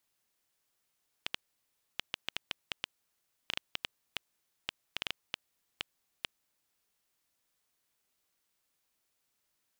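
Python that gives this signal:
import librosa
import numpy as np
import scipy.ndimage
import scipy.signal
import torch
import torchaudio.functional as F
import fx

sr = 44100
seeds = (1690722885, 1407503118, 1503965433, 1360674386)

y = fx.geiger_clicks(sr, seeds[0], length_s=5.69, per_s=4.0, level_db=-14.5)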